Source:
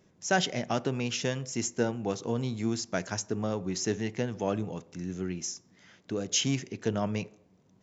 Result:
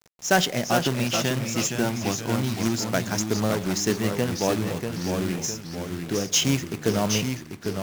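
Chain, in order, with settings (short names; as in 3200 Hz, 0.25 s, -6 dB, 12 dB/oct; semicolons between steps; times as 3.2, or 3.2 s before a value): 0.84–2.91 bell 470 Hz -11.5 dB 0.3 oct; companded quantiser 4-bit; echoes that change speed 0.392 s, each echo -1 st, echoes 3, each echo -6 dB; gain +5.5 dB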